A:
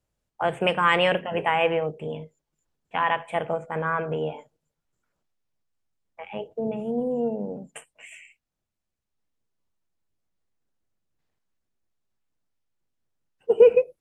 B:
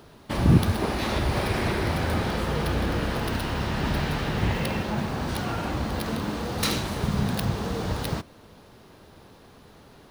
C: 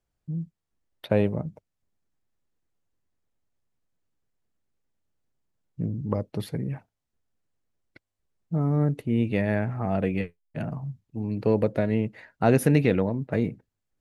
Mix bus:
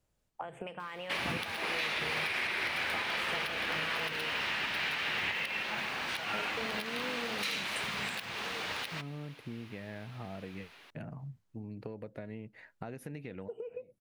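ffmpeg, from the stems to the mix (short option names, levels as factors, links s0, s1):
-filter_complex "[0:a]acompressor=threshold=0.0447:ratio=6,volume=1.19,asplit=2[s0][s1];[1:a]highpass=f=900:p=1,equalizer=f=2400:t=o:w=1.4:g=14.5,adelay=800,volume=0.473[s2];[2:a]agate=range=0.0224:threshold=0.00447:ratio=3:detection=peak,adynamicequalizer=threshold=0.00631:dfrequency=2000:dqfactor=0.81:tfrequency=2000:tqfactor=0.81:attack=5:release=100:ratio=0.375:range=2:mode=boostabove:tftype=bell,alimiter=limit=0.237:level=0:latency=1:release=288,adelay=400,volume=0.398[s3];[s1]apad=whole_len=635095[s4];[s3][s4]sidechaincompress=threshold=0.00355:ratio=6:attack=16:release=769[s5];[s0][s5]amix=inputs=2:normalize=0,acompressor=threshold=0.0112:ratio=8,volume=1[s6];[s2][s6]amix=inputs=2:normalize=0,alimiter=limit=0.0668:level=0:latency=1:release=195"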